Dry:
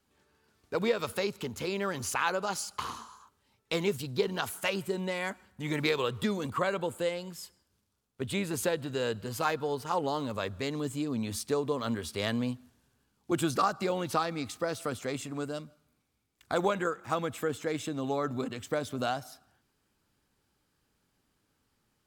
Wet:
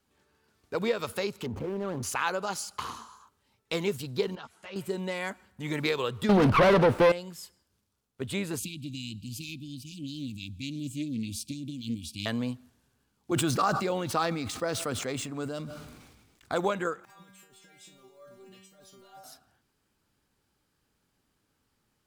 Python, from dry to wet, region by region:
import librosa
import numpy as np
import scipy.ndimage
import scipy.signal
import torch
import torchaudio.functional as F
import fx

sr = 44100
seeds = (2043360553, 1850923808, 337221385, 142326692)

y = fx.chain(x, sr, fx.median_filter(points=25),
    fx.high_shelf(hz=2200.0, db=-11.5),
    fx.env_flatten(amount_pct=70), at=(1.46, 2.03))
y = fx.chain(y, sr, fx.lowpass(hz=5000.0, slope=12),
    fx.level_steps(step_db=20),
    fx.ensemble(), at=(4.35, 4.76))
y = fx.chain(y, sr, fx.leveller(passes=5),
    fx.moving_average(points=6),
    fx.running_max(window=9), at=(6.29, 7.12))
y = fx.chain(y, sr, fx.brickwall_bandstop(low_hz=330.0, high_hz=2300.0),
    fx.doppler_dist(depth_ms=0.16), at=(8.59, 12.26))
y = fx.chain(y, sr, fx.median_filter(points=3),
    fx.sustainer(db_per_s=40.0), at=(13.32, 16.55))
y = fx.chain(y, sr, fx.block_float(bits=5),
    fx.over_compress(threshold_db=-36.0, ratio=-1.0),
    fx.stiff_resonator(f0_hz=190.0, decay_s=0.55, stiffness=0.002), at=(17.05, 19.24))